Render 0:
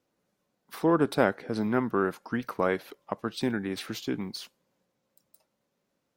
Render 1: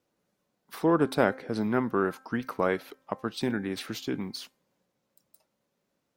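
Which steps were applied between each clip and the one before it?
hum removal 262.3 Hz, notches 9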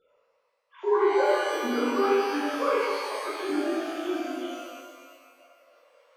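three sine waves on the formant tracks
reversed playback
upward compression, threshold −44 dBFS
reversed playback
reverb with rising layers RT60 1.7 s, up +12 semitones, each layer −8 dB, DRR −9 dB
level −7.5 dB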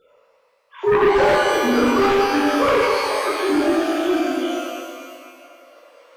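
sine wavefolder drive 7 dB, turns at −12 dBFS
delay that swaps between a low-pass and a high-pass 126 ms, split 990 Hz, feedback 68%, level −10.5 dB
floating-point word with a short mantissa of 6 bits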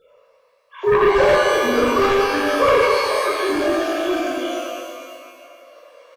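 comb filter 1.8 ms, depth 46%

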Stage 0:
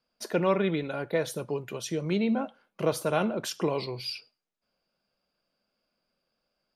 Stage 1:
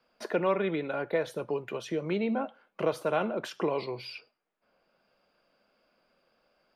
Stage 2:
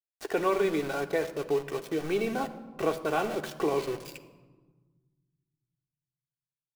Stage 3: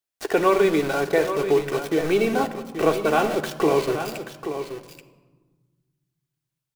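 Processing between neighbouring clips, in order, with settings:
bass and treble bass −8 dB, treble −13 dB; multiband upward and downward compressor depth 40%
centre clipping without the shift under −37 dBFS; on a send at −4 dB: convolution reverb RT60 1.4 s, pre-delay 3 ms
single-tap delay 831 ms −9.5 dB; level +8 dB

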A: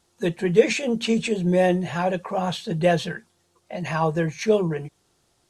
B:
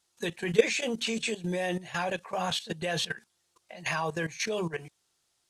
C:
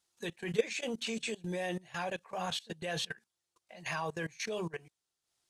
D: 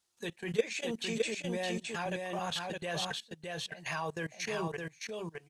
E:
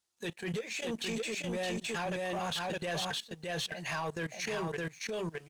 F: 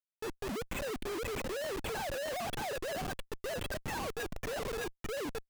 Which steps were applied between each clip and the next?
tilt shelving filter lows −7 dB; output level in coarse steps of 15 dB
transient designer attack −3 dB, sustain −8 dB; level −5 dB
single-tap delay 614 ms −3.5 dB
downward compressor, threshold −36 dBFS, peak gain reduction 13.5 dB; transient designer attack −7 dB, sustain +1 dB; leveller curve on the samples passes 2
three sine waves on the formant tracks; comparator with hysteresis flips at −38 dBFS

